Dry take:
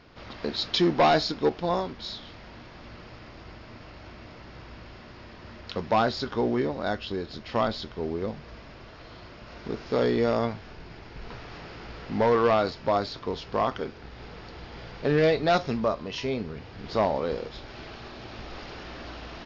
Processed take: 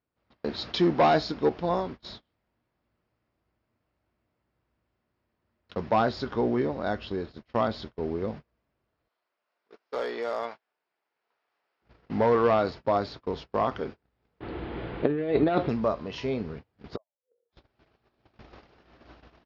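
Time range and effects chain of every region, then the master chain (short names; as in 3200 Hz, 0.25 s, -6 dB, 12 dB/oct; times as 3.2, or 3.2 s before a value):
9.08–11.82 HPF 660 Hz + hard clip -21.5 dBFS
14.4–15.69 steep low-pass 3800 Hz + bell 330 Hz +9 dB 0.75 oct + negative-ratio compressor -22 dBFS, ratio -0.5
16.96–17.53 spectral contrast raised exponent 2.2 + HPF 900 Hz + flipped gate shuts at -29 dBFS, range -34 dB
whole clip: gate -37 dBFS, range -32 dB; HPF 43 Hz; high shelf 2900 Hz -9 dB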